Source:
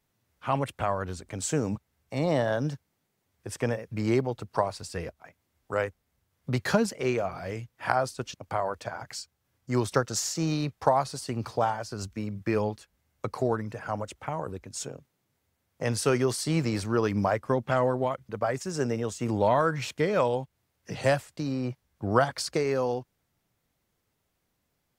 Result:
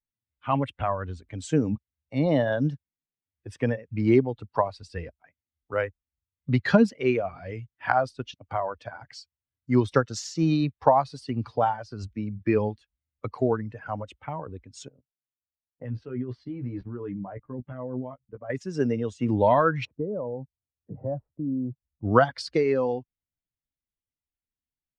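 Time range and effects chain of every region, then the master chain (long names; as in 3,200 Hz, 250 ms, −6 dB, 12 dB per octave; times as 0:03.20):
0:08.60–0:09.16: downward expander −52 dBFS + notch filter 4,000 Hz, Q 25
0:14.88–0:18.50: output level in coarse steps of 17 dB + head-to-tape spacing loss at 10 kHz 33 dB + double-tracking delay 16 ms −5.5 dB
0:19.85–0:22.05: Bessel low-pass filter 650 Hz, order 4 + downward compressor 2 to 1, threshold −30 dBFS
whole clip: spectral dynamics exaggerated over time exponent 1.5; low-pass filter 3,800 Hz 12 dB per octave; parametric band 250 Hz +4.5 dB 0.68 octaves; level +5.5 dB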